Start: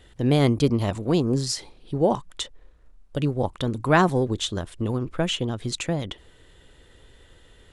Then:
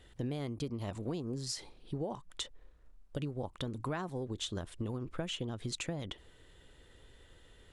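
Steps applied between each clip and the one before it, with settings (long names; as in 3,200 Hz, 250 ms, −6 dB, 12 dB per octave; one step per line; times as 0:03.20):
downward compressor 16 to 1, threshold −27 dBFS, peak gain reduction 15 dB
level −6.5 dB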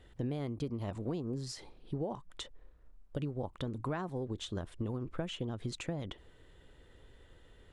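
high-shelf EQ 2,700 Hz −8.5 dB
level +1 dB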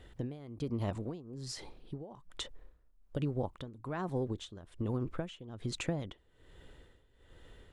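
amplitude tremolo 1.2 Hz, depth 84%
level +4 dB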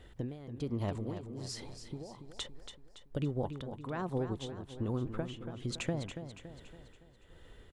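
repeating echo 282 ms, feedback 49%, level −9.5 dB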